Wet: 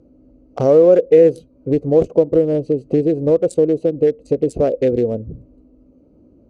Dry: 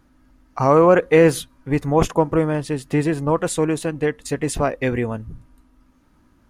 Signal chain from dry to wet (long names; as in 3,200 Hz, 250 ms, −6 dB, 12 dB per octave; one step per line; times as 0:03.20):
adaptive Wiener filter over 25 samples
high-pass filter 47 Hz
low shelf with overshoot 710 Hz +10.5 dB, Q 3
downward compressor 2 to 1, threshold −17 dBFS, peak gain reduction 13 dB
low-pass filter 7,200 Hz 12 dB per octave
bass and treble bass −6 dB, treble +10 dB